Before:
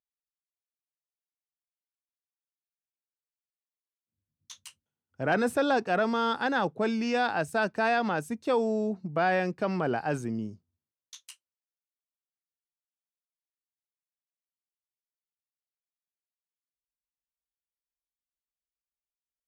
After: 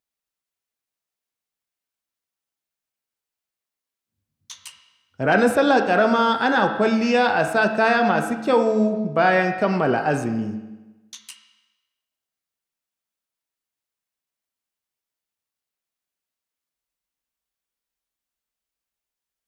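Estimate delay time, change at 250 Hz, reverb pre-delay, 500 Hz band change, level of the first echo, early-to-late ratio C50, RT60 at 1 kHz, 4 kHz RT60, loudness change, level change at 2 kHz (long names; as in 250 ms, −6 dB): no echo audible, +8.5 dB, 4 ms, +9.0 dB, no echo audible, 7.5 dB, 1.1 s, 1.1 s, +9.0 dB, +9.0 dB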